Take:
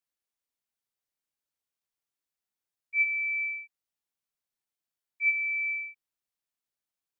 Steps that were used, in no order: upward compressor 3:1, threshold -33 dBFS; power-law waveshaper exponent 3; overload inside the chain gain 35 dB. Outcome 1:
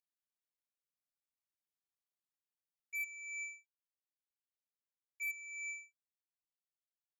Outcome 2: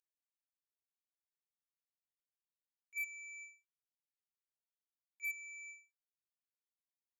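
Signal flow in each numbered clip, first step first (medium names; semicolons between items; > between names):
power-law waveshaper > upward compressor > overload inside the chain; upward compressor > power-law waveshaper > overload inside the chain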